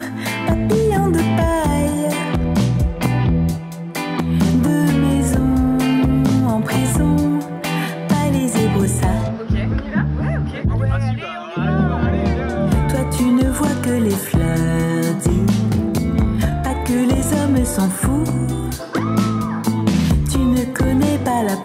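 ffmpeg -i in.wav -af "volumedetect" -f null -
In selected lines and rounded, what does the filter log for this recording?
mean_volume: -17.0 dB
max_volume: -5.0 dB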